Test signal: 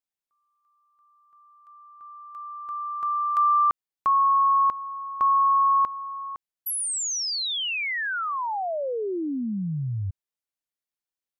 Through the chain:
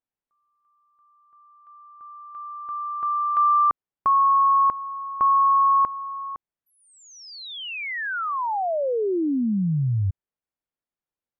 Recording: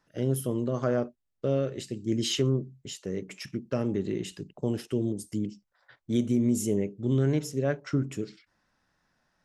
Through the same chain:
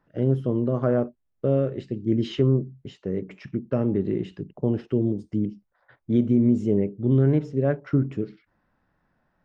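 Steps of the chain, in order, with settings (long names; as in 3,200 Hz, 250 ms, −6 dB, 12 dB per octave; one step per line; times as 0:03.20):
head-to-tape spacing loss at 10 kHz 41 dB
level +6.5 dB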